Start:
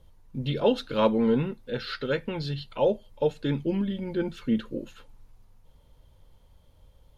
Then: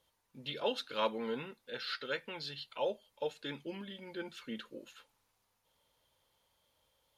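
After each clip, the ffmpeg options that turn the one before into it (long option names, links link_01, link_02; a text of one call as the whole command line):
ffmpeg -i in.wav -af "highpass=frequency=1400:poles=1,volume=-2.5dB" out.wav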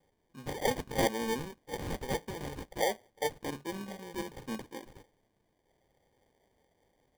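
ffmpeg -i in.wav -af "acrusher=samples=33:mix=1:aa=0.000001,volume=4dB" out.wav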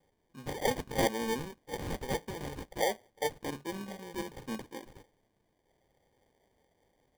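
ffmpeg -i in.wav -af anull out.wav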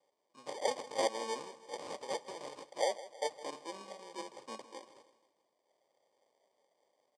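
ffmpeg -i in.wav -af "highpass=430,equalizer=frequency=590:width_type=q:width=4:gain=7,equalizer=frequency=1100:width_type=q:width=4:gain=7,equalizer=frequency=1600:width_type=q:width=4:gain=-9,equalizer=frequency=5000:width_type=q:width=4:gain=6,equalizer=frequency=8400:width_type=q:width=4:gain=5,lowpass=frequency=8900:width=0.5412,lowpass=frequency=8900:width=1.3066,aecho=1:1:160|320|480|640:0.15|0.0748|0.0374|0.0187,volume=-4.5dB" out.wav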